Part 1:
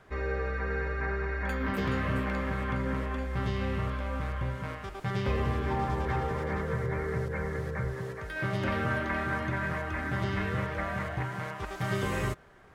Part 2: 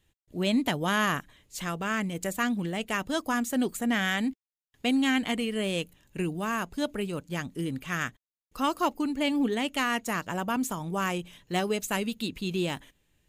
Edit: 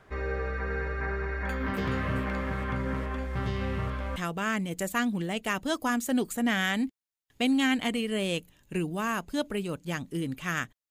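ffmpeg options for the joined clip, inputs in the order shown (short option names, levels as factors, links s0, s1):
-filter_complex "[0:a]apad=whole_dur=10.9,atrim=end=10.9,atrim=end=4.162[s0];[1:a]atrim=start=1.598:end=8.34[s1];[s0][s1]acrossfade=d=0.004:c1=hsin:c2=hsin"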